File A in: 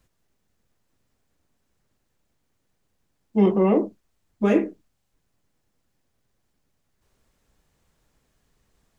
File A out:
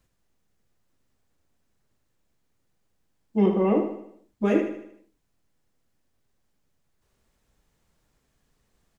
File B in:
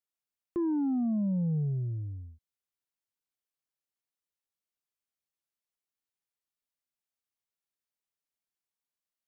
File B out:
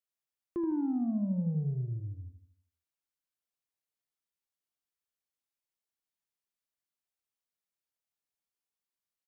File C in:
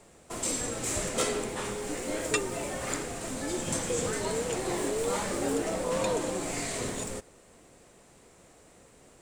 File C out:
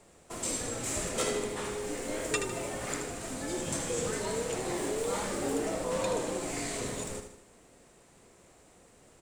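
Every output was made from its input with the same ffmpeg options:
-af "aecho=1:1:77|154|231|308|385|462:0.398|0.191|0.0917|0.044|0.0211|0.0101,volume=0.708"

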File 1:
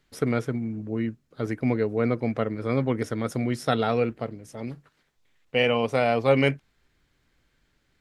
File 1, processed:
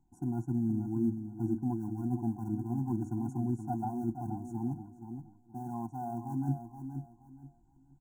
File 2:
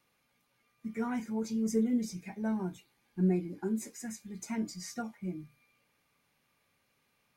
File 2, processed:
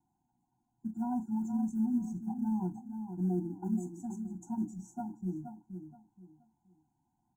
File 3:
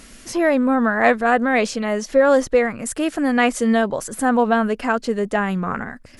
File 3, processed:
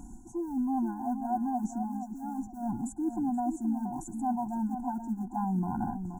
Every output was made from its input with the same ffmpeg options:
-filter_complex "[0:a]firequalizer=gain_entry='entry(270,0);entry(610,8);entry(1900,-30);entry(7200,-5);entry(11000,-17)':delay=0.05:min_phase=1,areverse,acompressor=threshold=0.0398:ratio=5,areverse,asplit=2[s0][s1];[s1]adelay=474,lowpass=f=2400:p=1,volume=0.398,asplit=2[s2][s3];[s3]adelay=474,lowpass=f=2400:p=1,volume=0.27,asplit=2[s4][s5];[s5]adelay=474,lowpass=f=2400:p=1,volume=0.27[s6];[s0][s2][s4][s6]amix=inputs=4:normalize=0,asplit=2[s7][s8];[s8]acrusher=bits=5:mode=log:mix=0:aa=0.000001,volume=0.398[s9];[s7][s9]amix=inputs=2:normalize=0,asuperstop=centerf=3100:order=12:qfactor=0.67,afftfilt=real='re*eq(mod(floor(b*sr/1024/350),2),0)':imag='im*eq(mod(floor(b*sr/1024/350),2),0)':win_size=1024:overlap=0.75,volume=0.841"

